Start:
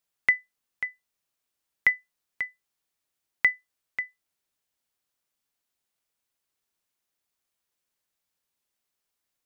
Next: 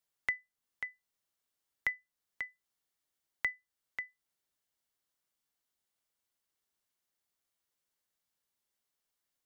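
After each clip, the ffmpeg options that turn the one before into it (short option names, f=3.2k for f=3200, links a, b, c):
-filter_complex "[0:a]bandreject=f=2.5k:w=14,acrossover=split=170[a][b];[b]acompressor=threshold=-41dB:ratio=1.5[c];[a][c]amix=inputs=2:normalize=0,volume=-3.5dB"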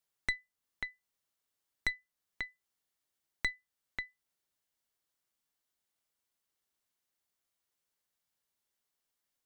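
-af "aeval=exprs='(tanh(25.1*val(0)+0.8)-tanh(0.8))/25.1':c=same,volume=5dB"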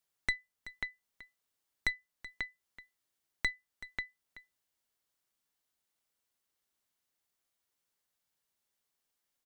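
-af "aecho=1:1:379:0.158,volume=1dB"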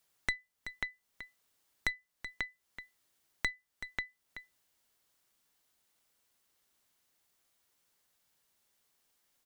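-af "acompressor=threshold=-55dB:ratio=1.5,volume=8.5dB"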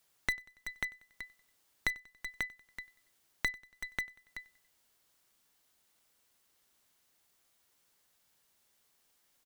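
-filter_complex "[0:a]asplit=2[a][b];[b]aeval=exprs='(mod(39.8*val(0)+1,2)-1)/39.8':c=same,volume=-8dB[c];[a][c]amix=inputs=2:normalize=0,aecho=1:1:94|188|282:0.0631|0.0334|0.0177"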